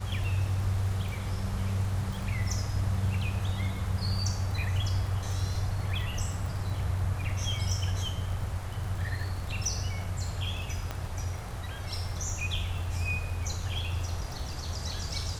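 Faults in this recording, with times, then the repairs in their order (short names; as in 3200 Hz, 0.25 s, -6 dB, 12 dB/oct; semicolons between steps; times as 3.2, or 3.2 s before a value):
crackle 38/s -36 dBFS
10.91 pop -19 dBFS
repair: de-click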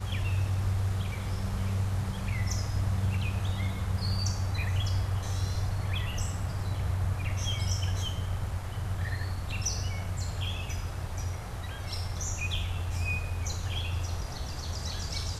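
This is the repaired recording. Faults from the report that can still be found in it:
10.91 pop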